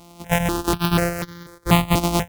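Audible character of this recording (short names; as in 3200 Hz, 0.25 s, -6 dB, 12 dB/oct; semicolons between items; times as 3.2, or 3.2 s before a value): a buzz of ramps at a fixed pitch in blocks of 256 samples; notches that jump at a steady rate 4.1 Hz 450–2600 Hz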